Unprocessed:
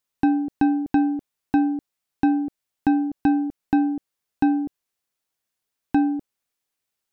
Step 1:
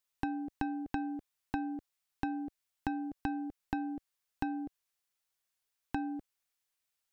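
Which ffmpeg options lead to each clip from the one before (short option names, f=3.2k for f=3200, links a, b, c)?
-af "acompressor=threshold=-23dB:ratio=5,equalizer=f=240:w=0.45:g=-8.5,volume=-2.5dB"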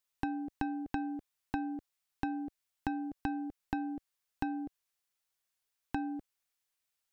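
-af anull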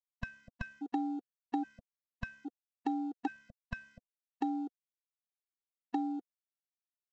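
-af "aresample=16000,aeval=exprs='sgn(val(0))*max(abs(val(0))-0.00106,0)':c=same,aresample=44100,afftfilt=real='re*gt(sin(2*PI*0.61*pts/sr)*(1-2*mod(floor(b*sr/1024/240),2)),0)':imag='im*gt(sin(2*PI*0.61*pts/sr)*(1-2*mod(floor(b*sr/1024/240),2)),0)':win_size=1024:overlap=0.75,volume=2.5dB"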